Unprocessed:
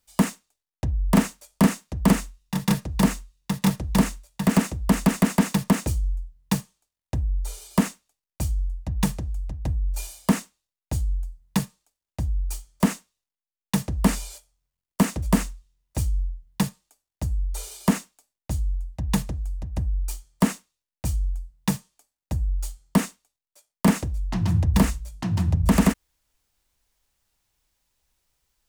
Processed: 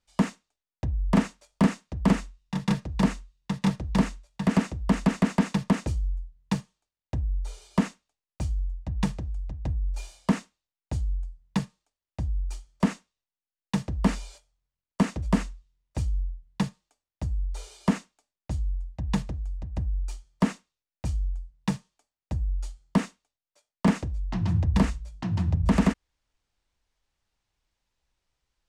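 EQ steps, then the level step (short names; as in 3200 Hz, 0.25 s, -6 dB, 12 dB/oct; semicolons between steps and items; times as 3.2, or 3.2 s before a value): air absorption 86 m; -3.0 dB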